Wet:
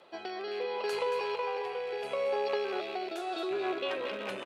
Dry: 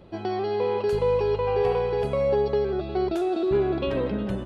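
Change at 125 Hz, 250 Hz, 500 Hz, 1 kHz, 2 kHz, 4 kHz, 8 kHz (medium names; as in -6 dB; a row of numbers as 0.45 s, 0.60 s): under -25 dB, -13.5 dB, -9.5 dB, -5.0 dB, +0.5 dB, +1.0 dB, no reading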